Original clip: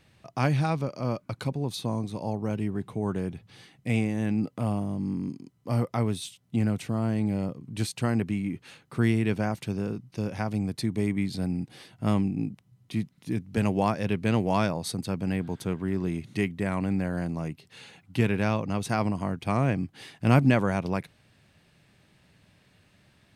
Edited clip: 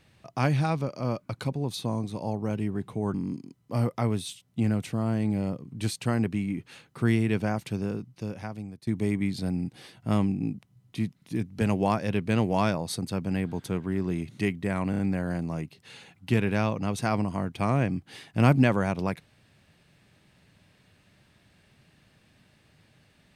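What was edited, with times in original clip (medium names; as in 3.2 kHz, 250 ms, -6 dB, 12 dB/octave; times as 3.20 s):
3.14–5.10 s: delete
9.84–10.83 s: fade out, to -18.5 dB
16.86 s: stutter 0.03 s, 4 plays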